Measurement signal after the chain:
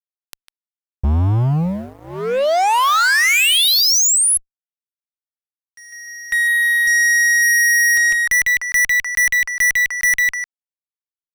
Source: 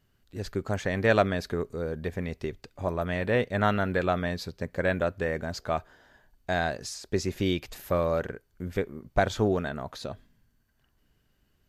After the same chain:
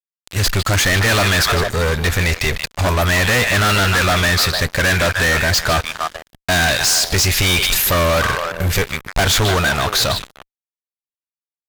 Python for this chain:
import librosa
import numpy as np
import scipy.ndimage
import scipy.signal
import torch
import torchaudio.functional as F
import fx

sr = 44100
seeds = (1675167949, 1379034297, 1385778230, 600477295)

y = fx.tone_stack(x, sr, knobs='10-0-10')
y = fx.echo_stepped(y, sr, ms=151, hz=2900.0, octaves=-1.4, feedback_pct=70, wet_db=-8)
y = fx.fuzz(y, sr, gain_db=50.0, gate_db=-58.0)